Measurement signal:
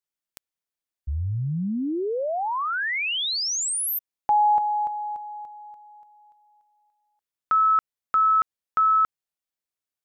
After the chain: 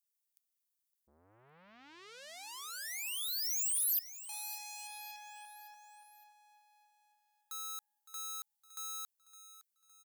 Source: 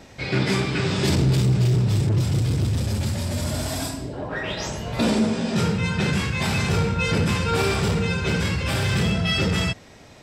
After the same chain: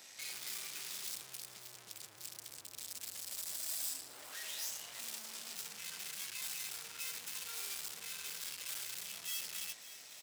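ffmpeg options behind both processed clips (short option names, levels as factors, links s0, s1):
-af "aeval=exprs='(tanh(100*val(0)+0.6)-tanh(0.6))/100':c=same,aderivative,aecho=1:1:562|1124|1686|2248:0.188|0.0866|0.0399|0.0183,volume=1.88"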